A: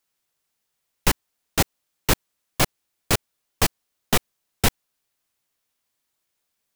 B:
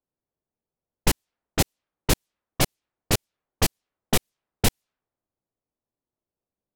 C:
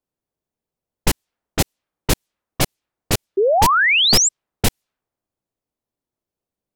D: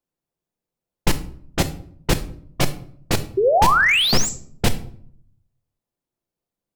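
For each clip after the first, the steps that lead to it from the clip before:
level-controlled noise filter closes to 560 Hz, open at -20 dBFS; dynamic bell 1.3 kHz, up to -6 dB, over -39 dBFS, Q 0.88
painted sound rise, 3.37–4.29 s, 370–7900 Hz -18 dBFS; trim +3 dB
simulated room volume 890 m³, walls furnished, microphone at 0.83 m; slew-rate limiter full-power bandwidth 530 Hz; trim -1 dB

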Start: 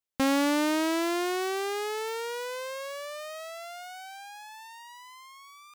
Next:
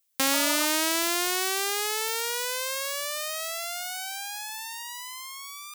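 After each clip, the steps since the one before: spectral replace 0.36–0.63 s, 610–1300 Hz after; in parallel at -0.5 dB: compression, threshold -38 dBFS, peak gain reduction 14.5 dB; on the sum: tilt EQ +4 dB/octave; trim -1 dB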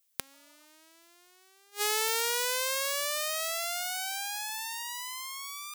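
inverted gate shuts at -9 dBFS, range -34 dB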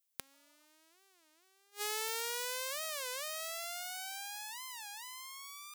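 warped record 33 1/3 rpm, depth 250 cents; trim -8.5 dB

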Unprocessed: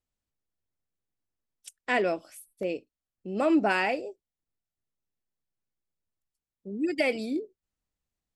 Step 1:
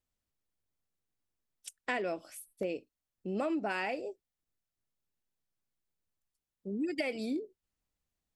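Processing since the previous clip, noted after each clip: compression 6:1, threshold -31 dBFS, peak gain reduction 12 dB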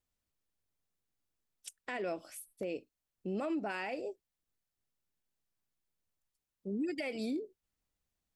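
peak limiter -29 dBFS, peak gain reduction 8.5 dB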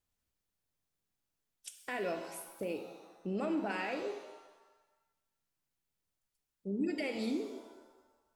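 pitch-shifted reverb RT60 1.1 s, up +7 st, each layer -8 dB, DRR 5.5 dB

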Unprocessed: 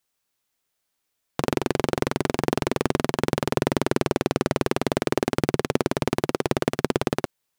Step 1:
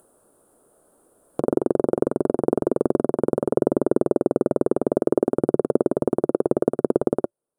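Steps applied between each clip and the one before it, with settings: FFT filter 110 Hz 0 dB, 350 Hz +12 dB, 580 Hz +12 dB, 860 Hz +1 dB, 1.4 kHz -1 dB, 2.1 kHz -25 dB, 3.2 kHz -21 dB, 5.9 kHz -23 dB, 9.5 kHz +3 dB, 14 kHz -17 dB; upward compressor, threshold -31 dBFS; trim -6.5 dB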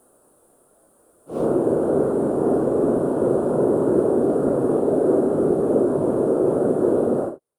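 phase randomisation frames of 200 ms; trim +2.5 dB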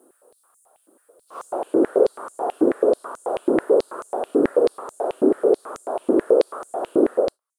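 step-sequenced high-pass 9.2 Hz 310–6800 Hz; trim -2.5 dB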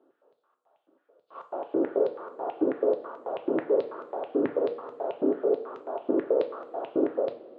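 elliptic band-pass 120–3300 Hz, stop band 60 dB; two-slope reverb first 0.39 s, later 3 s, from -18 dB, DRR 6 dB; trim -8 dB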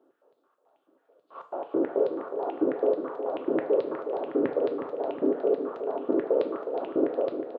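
feedback delay 364 ms, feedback 58%, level -9 dB

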